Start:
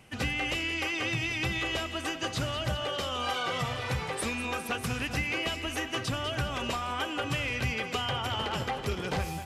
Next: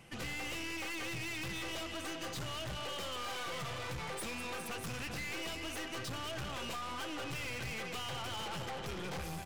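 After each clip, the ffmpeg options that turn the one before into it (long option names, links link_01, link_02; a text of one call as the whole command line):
ffmpeg -i in.wav -af "aecho=1:1:5.9:0.35,aeval=exprs='(tanh(89.1*val(0)+0.45)-tanh(0.45))/89.1':channel_layout=same" out.wav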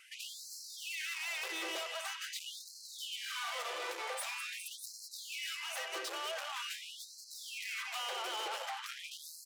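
ffmpeg -i in.wav -af "afftfilt=real='re*gte(b*sr/1024,310*pow(4100/310,0.5+0.5*sin(2*PI*0.45*pts/sr)))':imag='im*gte(b*sr/1024,310*pow(4100/310,0.5+0.5*sin(2*PI*0.45*pts/sr)))':win_size=1024:overlap=0.75,volume=2.5dB" out.wav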